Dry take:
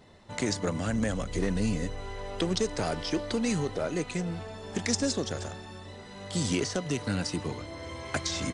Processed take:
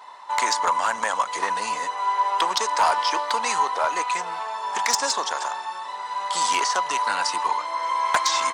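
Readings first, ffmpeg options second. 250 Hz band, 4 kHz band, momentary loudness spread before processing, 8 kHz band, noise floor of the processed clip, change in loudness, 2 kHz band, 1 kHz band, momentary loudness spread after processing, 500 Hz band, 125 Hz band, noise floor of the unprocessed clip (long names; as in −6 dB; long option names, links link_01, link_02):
−14.0 dB, +8.5 dB, 11 LU, +8.0 dB, −35 dBFS, +8.0 dB, +10.5 dB, +21.0 dB, 8 LU, 0.0 dB, below −20 dB, −45 dBFS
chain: -af "highpass=frequency=970:width_type=q:width=9.7,asoftclip=type=hard:threshold=-20dB,volume=8dB"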